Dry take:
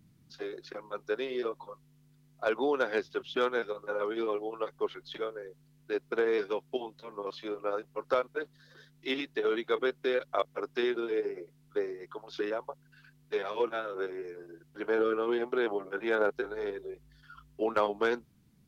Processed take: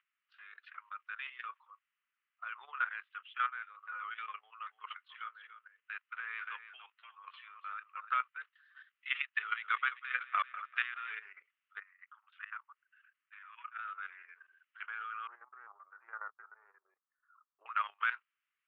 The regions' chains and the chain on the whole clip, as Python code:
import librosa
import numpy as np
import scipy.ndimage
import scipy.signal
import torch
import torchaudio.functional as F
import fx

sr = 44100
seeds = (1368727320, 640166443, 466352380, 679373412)

y = fx.chain(x, sr, fx.lowpass(hz=4300.0, slope=24),
    fx.high_shelf(hz=2000.0, db=-6.5), at=(1.63, 3.83))
y = fx.chain(y, sr, fx.lowpass(hz=4600.0, slope=12),
    fx.low_shelf(hz=340.0, db=-6.5),
    fx.echo_single(ms=292, db=-9.0), at=(4.39, 8.13))
y = fx.chain(y, sr, fx.leveller(passes=1),
    fx.echo_crushed(ms=195, feedback_pct=55, bits=9, wet_db=-15.0), at=(9.19, 11.15))
y = fx.chain(y, sr, fx.peak_eq(hz=4900.0, db=-12.5, octaves=1.1),
    fx.level_steps(step_db=11),
    fx.cheby1_bandstop(low_hz=140.0, high_hz=1100.0, order=2), at=(11.8, 13.79))
y = fx.chain(y, sr, fx.lowpass(hz=1000.0, slope=24),
    fx.peak_eq(hz=250.0, db=12.5, octaves=0.36),
    fx.doppler_dist(depth_ms=0.11), at=(15.27, 17.66))
y = scipy.signal.sosfilt(scipy.signal.ellip(3, 1.0, 80, [1200.0, 2900.0], 'bandpass', fs=sr, output='sos'), y)
y = fx.level_steps(y, sr, step_db=12)
y = y * 10.0 ** (6.0 / 20.0)